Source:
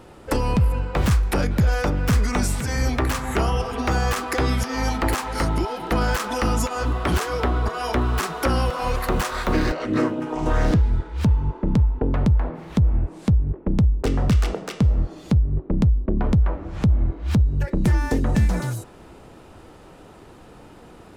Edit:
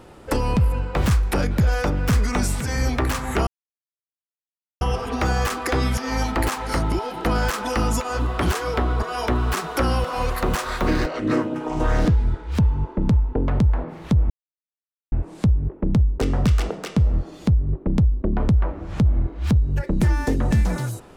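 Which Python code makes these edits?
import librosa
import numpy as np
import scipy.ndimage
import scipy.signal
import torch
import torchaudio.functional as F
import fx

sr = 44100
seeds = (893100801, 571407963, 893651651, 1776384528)

y = fx.edit(x, sr, fx.insert_silence(at_s=3.47, length_s=1.34),
    fx.insert_silence(at_s=12.96, length_s=0.82), tone=tone)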